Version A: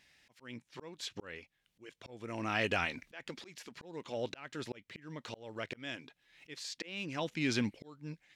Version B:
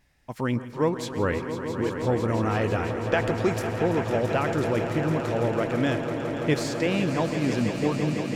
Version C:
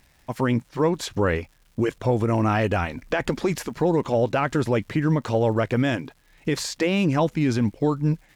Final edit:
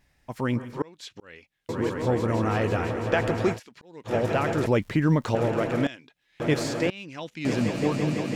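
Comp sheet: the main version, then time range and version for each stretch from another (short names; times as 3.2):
B
0.82–1.69 from A
3.55–4.09 from A, crossfade 0.10 s
4.66–5.35 from C
5.87–6.4 from A
6.9–7.45 from A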